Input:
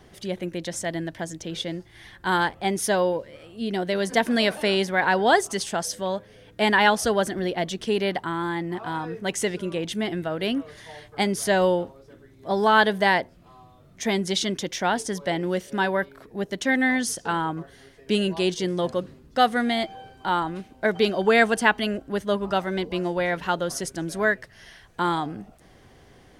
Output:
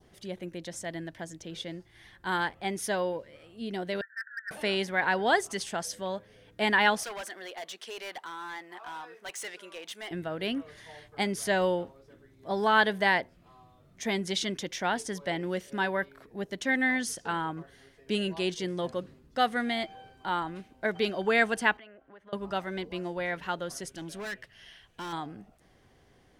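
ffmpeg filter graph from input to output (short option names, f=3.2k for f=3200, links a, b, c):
-filter_complex "[0:a]asettb=1/sr,asplit=3[a][b][c];[a]atrim=end=4.014[d];[b]atrim=start=4.01:end=4.51,asetpts=PTS-STARTPTS,afade=t=in:d=0.004:c=qsin,afade=t=out:st=0.496:d=0.004:c=qsin,asuperpass=centerf=1600:order=20:qfactor=3,asoftclip=type=hard:threshold=-26.5dB[e];[c]atrim=start=4.506[f];[d][e]acrossfade=d=0.004:c1=hsin:c2=qsin[g];[g][f]acrossfade=d=0.004:c1=qsin:c2=hsin,asettb=1/sr,asplit=3[h][i][j];[h]atrim=end=7.034[k];[i]atrim=start=7.03:end=10.11,asetpts=PTS-STARTPTS,afade=t=in:d=0.004:c=qsin,afade=t=out:st=3.076:d=0.004:c=qsin,highpass=740,asoftclip=type=hard:threshold=-29dB[l];[j]atrim=start=10.106[m];[k][l]acrossfade=d=0.004:c1=hsin:c2=qsin[n];[n][m]acrossfade=d=0.004:c1=qsin:c2=hsin,asettb=1/sr,asplit=3[o][p][q];[o]atrim=end=21.774[r];[p]atrim=start=21.77:end=22.33,asetpts=PTS-STARTPTS,afade=t=in:d=0.004:c=qsin,afade=t=out:st=0.556:d=0.004:c=qsin,lowpass=12k,acrossover=split=500 2500:gain=0.2 1 0.0794[s][t][u];[s][t][u]amix=inputs=3:normalize=0,acompressor=threshold=-42dB:ratio=4:attack=3.2:release=140:knee=1:detection=peak[v];[q]atrim=start=22.326[w];[r][v]acrossfade=d=0.004:c1=hsin:c2=qsin[x];[x][w]acrossfade=d=0.004:c1=qsin:c2=hsin,asettb=1/sr,asplit=3[y][z][aa];[y]atrim=end=23.894[ab];[z]atrim=start=23.89:end=25.13,asetpts=PTS-STARTPTS,afade=t=in:d=0.004:c=qsin,afade=t=out:st=1.236:d=0.004:c=qsin,equalizer=f=3k:t=o:w=0.51:g=10,asoftclip=type=hard:threshold=-26.5dB[ac];[aa]atrim=start=25.126[ad];[ab][ac]acrossfade=d=0.004:c1=hsin:c2=qsin[ae];[ae][ad]acrossfade=d=0.004:c1=qsin:c2=hsin,dynaudnorm=f=450:g=21:m=3dB,adynamicequalizer=threshold=0.0224:dfrequency=2100:dqfactor=1.1:tfrequency=2100:tqfactor=1.1:attack=5:release=100:ratio=0.375:range=2:mode=boostabove:tftype=bell,volume=-8.5dB"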